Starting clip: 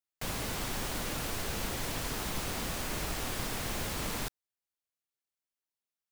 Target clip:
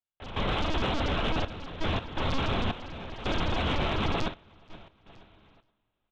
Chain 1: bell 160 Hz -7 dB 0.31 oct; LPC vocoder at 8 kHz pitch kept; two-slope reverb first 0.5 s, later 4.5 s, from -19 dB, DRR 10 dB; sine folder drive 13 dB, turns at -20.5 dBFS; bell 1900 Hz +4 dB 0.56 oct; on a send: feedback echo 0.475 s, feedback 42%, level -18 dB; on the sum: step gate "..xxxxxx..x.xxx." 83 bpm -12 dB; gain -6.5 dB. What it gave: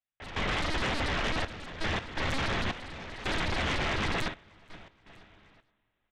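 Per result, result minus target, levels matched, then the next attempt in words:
sine folder: distortion +12 dB; 2000 Hz band +4.5 dB
bell 160 Hz -7 dB 0.31 oct; LPC vocoder at 8 kHz pitch kept; two-slope reverb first 0.5 s, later 4.5 s, from -19 dB, DRR 10 dB; sine folder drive 13 dB, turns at -13.5 dBFS; bell 1900 Hz +4 dB 0.56 oct; on a send: feedback echo 0.475 s, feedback 42%, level -18 dB; on the sum: step gate "..xxxxxx..x.xxx." 83 bpm -12 dB; gain -6.5 dB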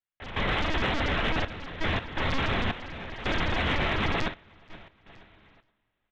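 2000 Hz band +4.5 dB
bell 160 Hz -7 dB 0.31 oct; LPC vocoder at 8 kHz pitch kept; two-slope reverb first 0.5 s, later 4.5 s, from -19 dB, DRR 10 dB; sine folder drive 13 dB, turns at -13.5 dBFS; bell 1900 Hz -6.5 dB 0.56 oct; on a send: feedback echo 0.475 s, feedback 42%, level -18 dB; on the sum: step gate "..xxxxxx..x.xxx." 83 bpm -12 dB; gain -6.5 dB

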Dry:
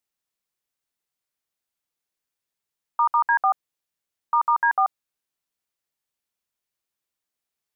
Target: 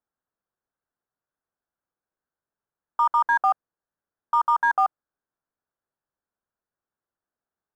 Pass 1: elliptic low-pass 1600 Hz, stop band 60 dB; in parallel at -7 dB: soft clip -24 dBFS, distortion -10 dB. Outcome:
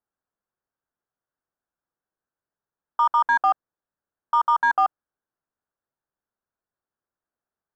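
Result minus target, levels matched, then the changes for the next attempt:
soft clip: distortion -5 dB
change: soft clip -35.5 dBFS, distortion -5 dB

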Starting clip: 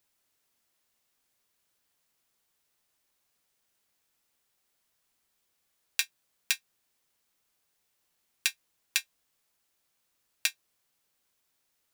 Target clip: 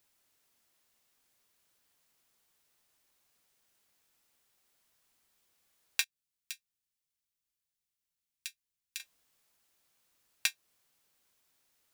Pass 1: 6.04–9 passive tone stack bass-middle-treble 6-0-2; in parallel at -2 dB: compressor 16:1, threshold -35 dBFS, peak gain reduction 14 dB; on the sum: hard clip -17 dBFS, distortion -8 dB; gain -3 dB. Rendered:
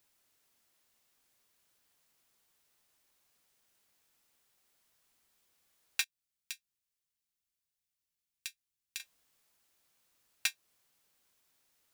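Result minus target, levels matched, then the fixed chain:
hard clip: distortion +6 dB
6.04–9 passive tone stack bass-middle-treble 6-0-2; in parallel at -2 dB: compressor 16:1, threshold -35 dBFS, peak gain reduction 14 dB; on the sum: hard clip -8 dBFS, distortion -14 dB; gain -3 dB

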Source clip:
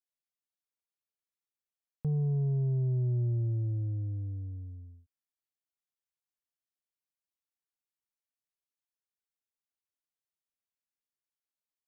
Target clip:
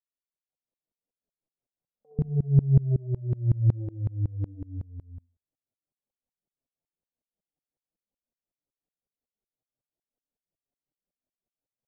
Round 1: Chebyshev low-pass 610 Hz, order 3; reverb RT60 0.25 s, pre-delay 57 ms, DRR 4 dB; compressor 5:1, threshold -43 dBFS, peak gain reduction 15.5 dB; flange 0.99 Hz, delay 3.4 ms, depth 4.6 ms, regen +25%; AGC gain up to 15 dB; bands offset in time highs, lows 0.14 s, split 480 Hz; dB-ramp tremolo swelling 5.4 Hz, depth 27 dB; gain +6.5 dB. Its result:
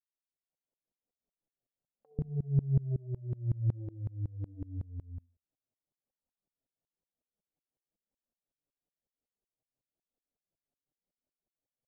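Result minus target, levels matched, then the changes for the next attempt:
compressor: peak gain reduction +8.5 dB
change: compressor 5:1, threshold -32.5 dBFS, peak gain reduction 7 dB

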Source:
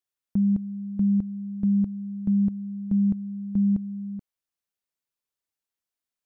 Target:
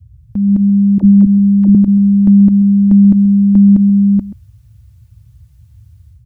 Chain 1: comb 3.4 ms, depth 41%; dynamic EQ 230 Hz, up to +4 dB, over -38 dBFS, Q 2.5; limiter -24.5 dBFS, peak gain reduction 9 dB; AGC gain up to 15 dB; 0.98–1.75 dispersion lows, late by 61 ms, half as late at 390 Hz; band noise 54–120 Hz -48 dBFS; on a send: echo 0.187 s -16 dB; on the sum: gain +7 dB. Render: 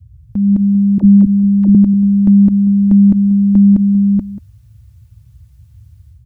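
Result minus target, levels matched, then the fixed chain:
echo 56 ms late
comb 3.4 ms, depth 41%; dynamic EQ 230 Hz, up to +4 dB, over -38 dBFS, Q 2.5; limiter -24.5 dBFS, peak gain reduction 9 dB; AGC gain up to 15 dB; 0.98–1.75 dispersion lows, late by 61 ms, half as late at 390 Hz; band noise 54–120 Hz -48 dBFS; on a send: echo 0.131 s -16 dB; on the sum: gain +7 dB

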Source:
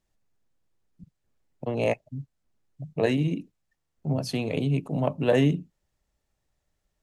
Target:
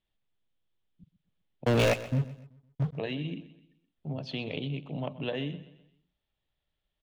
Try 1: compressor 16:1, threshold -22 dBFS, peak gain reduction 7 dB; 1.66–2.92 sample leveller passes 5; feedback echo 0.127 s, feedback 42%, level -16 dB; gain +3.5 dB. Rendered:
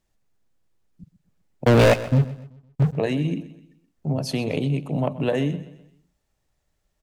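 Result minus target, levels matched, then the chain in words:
4000 Hz band -5.0 dB
compressor 16:1, threshold -22 dBFS, peak gain reduction 7 dB; ladder low-pass 3700 Hz, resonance 65%; 1.66–2.92 sample leveller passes 5; feedback echo 0.127 s, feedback 42%, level -16 dB; gain +3.5 dB

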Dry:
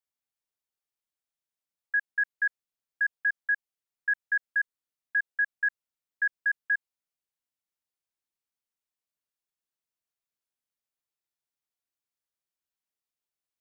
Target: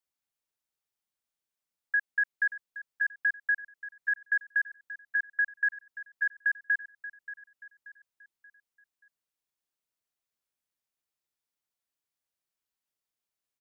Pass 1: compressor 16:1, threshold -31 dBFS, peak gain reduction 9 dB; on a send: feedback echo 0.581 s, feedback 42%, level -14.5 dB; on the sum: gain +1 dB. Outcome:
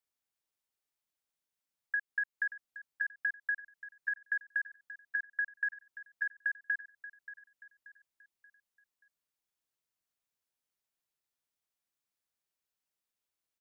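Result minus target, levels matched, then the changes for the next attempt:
compressor: peak gain reduction +7 dB
change: compressor 16:1, threshold -23 dBFS, peak gain reduction 2 dB

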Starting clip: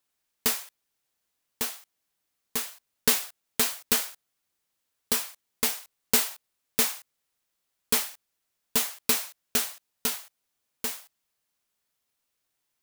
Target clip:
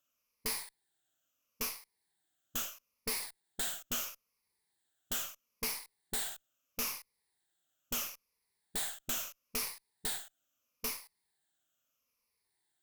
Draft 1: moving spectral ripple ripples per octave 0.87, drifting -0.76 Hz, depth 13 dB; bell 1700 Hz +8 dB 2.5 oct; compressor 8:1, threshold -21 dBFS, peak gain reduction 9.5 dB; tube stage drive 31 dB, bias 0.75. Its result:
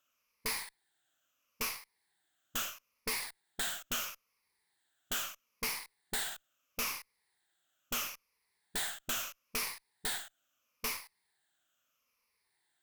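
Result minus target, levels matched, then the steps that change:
2000 Hz band +5.0 dB
remove: bell 1700 Hz +8 dB 2.5 oct

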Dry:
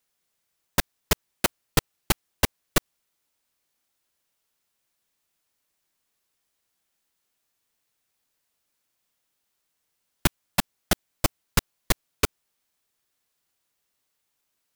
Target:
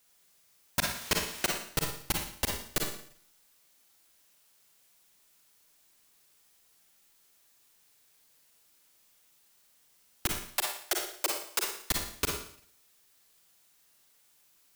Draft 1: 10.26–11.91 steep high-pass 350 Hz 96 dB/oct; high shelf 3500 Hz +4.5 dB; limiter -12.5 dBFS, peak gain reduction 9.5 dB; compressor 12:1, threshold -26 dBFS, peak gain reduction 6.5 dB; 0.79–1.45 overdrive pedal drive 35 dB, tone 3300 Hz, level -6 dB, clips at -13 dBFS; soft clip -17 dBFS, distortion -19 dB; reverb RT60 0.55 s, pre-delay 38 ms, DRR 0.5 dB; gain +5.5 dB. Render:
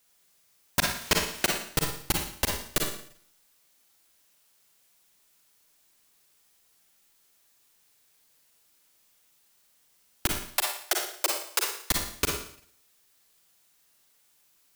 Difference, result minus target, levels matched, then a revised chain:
soft clip: distortion -10 dB
10.26–11.91 steep high-pass 350 Hz 96 dB/oct; high shelf 3500 Hz +4.5 dB; limiter -12.5 dBFS, peak gain reduction 9.5 dB; compressor 12:1, threshold -26 dBFS, peak gain reduction 6.5 dB; 0.79–1.45 overdrive pedal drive 35 dB, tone 3300 Hz, level -6 dB, clips at -13 dBFS; soft clip -26.5 dBFS, distortion -9 dB; reverb RT60 0.55 s, pre-delay 38 ms, DRR 0.5 dB; gain +5.5 dB

